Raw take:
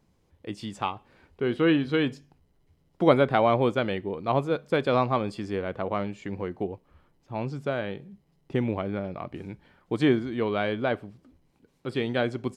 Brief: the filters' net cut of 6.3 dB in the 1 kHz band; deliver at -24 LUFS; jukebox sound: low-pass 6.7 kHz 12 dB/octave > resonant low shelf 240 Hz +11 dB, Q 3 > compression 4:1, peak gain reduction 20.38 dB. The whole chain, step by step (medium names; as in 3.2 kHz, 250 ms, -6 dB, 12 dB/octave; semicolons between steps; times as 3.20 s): low-pass 6.7 kHz 12 dB/octave; resonant low shelf 240 Hz +11 dB, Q 3; peaking EQ 1 kHz -7.5 dB; compression 4:1, threshold -34 dBFS; trim +12 dB